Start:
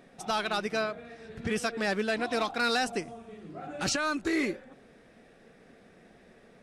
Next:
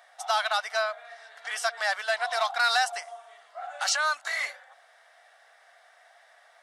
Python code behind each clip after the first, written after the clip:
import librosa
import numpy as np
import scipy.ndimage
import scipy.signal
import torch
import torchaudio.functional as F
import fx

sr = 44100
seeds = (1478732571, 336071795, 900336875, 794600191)

y = scipy.signal.sosfilt(scipy.signal.ellip(4, 1.0, 50, 680.0, 'highpass', fs=sr, output='sos'), x)
y = fx.notch(y, sr, hz=2500.0, q=5.7)
y = F.gain(torch.from_numpy(y), 5.5).numpy()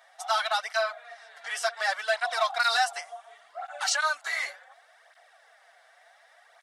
y = fx.flanger_cancel(x, sr, hz=0.68, depth_ms=7.1)
y = F.gain(torch.from_numpy(y), 2.5).numpy()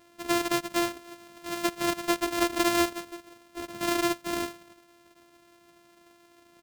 y = np.r_[np.sort(x[:len(x) // 128 * 128].reshape(-1, 128), axis=1).ravel(), x[len(x) // 128 * 128:]]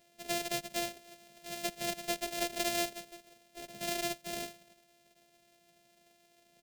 y = fx.fixed_phaser(x, sr, hz=310.0, stages=6)
y = F.gain(torch.from_numpy(y), -3.5).numpy()